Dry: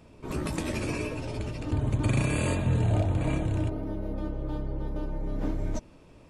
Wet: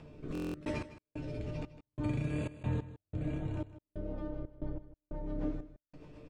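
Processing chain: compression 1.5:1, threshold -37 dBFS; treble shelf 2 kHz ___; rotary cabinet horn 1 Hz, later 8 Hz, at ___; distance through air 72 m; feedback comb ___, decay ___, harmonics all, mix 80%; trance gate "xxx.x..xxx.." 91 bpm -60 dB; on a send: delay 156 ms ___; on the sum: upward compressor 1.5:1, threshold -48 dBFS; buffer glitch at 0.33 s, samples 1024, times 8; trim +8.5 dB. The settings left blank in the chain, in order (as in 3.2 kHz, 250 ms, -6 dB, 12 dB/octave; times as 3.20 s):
-3 dB, 3.73 s, 150 Hz, 0.31 s, -15.5 dB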